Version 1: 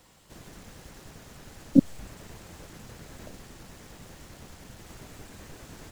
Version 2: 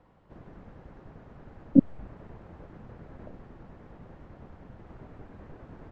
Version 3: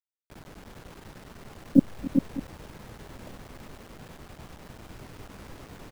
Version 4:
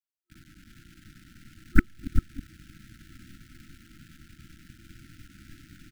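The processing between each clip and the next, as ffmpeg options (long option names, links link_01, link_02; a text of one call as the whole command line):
ffmpeg -i in.wav -af "lowpass=1200" out.wav
ffmpeg -i in.wav -af "acrusher=bits=7:mix=0:aa=0.000001,aecho=1:1:280|395|601:0.133|0.501|0.141" out.wav
ffmpeg -i in.wav -af "aeval=exprs='0.75*(cos(1*acos(clip(val(0)/0.75,-1,1)))-cos(1*PI/2))+0.299*(cos(3*acos(clip(val(0)/0.75,-1,1)))-cos(3*PI/2))+0.0531*(cos(7*acos(clip(val(0)/0.75,-1,1)))-cos(7*PI/2))+0.299*(cos(8*acos(clip(val(0)/0.75,-1,1)))-cos(8*PI/2))':channel_layout=same,afftfilt=real='re*(1-between(b*sr/4096,350,1300))':imag='im*(1-between(b*sr/4096,350,1300))':win_size=4096:overlap=0.75,volume=-1.5dB" out.wav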